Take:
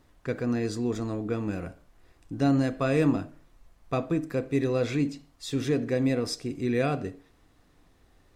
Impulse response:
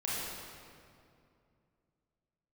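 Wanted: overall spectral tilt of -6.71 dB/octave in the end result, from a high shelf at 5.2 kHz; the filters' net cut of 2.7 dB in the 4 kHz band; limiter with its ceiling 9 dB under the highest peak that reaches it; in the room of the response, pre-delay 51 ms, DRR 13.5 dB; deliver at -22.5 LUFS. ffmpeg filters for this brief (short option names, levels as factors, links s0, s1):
-filter_complex "[0:a]equalizer=f=4000:t=o:g=-6.5,highshelf=f=5200:g=5.5,alimiter=limit=0.0841:level=0:latency=1,asplit=2[s0][s1];[1:a]atrim=start_sample=2205,adelay=51[s2];[s1][s2]afir=irnorm=-1:irlink=0,volume=0.112[s3];[s0][s3]amix=inputs=2:normalize=0,volume=2.82"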